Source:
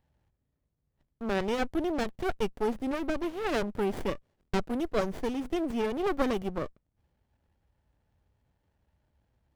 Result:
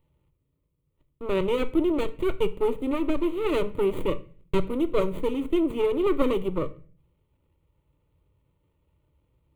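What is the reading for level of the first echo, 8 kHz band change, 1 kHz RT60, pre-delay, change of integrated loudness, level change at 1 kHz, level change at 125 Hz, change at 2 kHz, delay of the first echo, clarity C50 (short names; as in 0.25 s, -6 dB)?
none, n/a, 0.40 s, 3 ms, +5.0 dB, 0.0 dB, +4.0 dB, -1.5 dB, none, 17.5 dB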